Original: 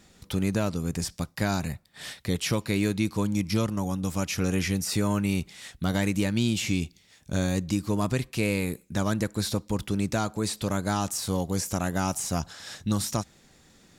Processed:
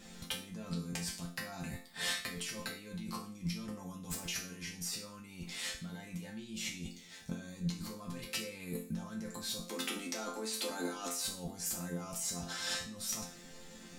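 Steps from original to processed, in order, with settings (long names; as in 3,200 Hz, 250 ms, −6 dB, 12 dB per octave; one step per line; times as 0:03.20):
0:09.61–0:11.21: Butterworth high-pass 240 Hz 48 dB per octave
compressor whose output falls as the input rises −37 dBFS, ratio −1
resonators tuned to a chord F3 major, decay 0.43 s
level +14 dB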